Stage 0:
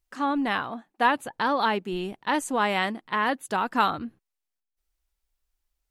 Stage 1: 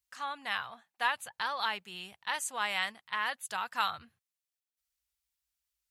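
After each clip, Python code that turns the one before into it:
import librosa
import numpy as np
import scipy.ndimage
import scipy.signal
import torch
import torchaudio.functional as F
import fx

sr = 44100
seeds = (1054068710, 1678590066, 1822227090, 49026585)

y = scipy.signal.sosfilt(scipy.signal.butter(4, 63.0, 'highpass', fs=sr, output='sos'), x)
y = fx.tone_stack(y, sr, knobs='10-0-10')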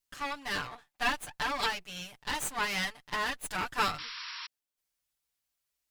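y = fx.lower_of_two(x, sr, delay_ms=6.8)
y = fx.spec_paint(y, sr, seeds[0], shape='noise', start_s=3.98, length_s=0.49, low_hz=920.0, high_hz=5700.0, level_db=-45.0)
y = y * 10.0 ** (3.5 / 20.0)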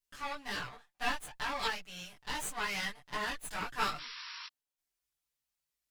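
y = fx.chorus_voices(x, sr, voices=6, hz=0.68, base_ms=19, depth_ms=5.0, mix_pct=50)
y = y * 10.0 ** (-1.0 / 20.0)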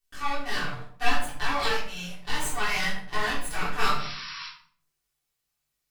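y = fx.room_shoebox(x, sr, seeds[1], volume_m3=790.0, walls='furnished', distance_m=3.5)
y = y * 10.0 ** (3.5 / 20.0)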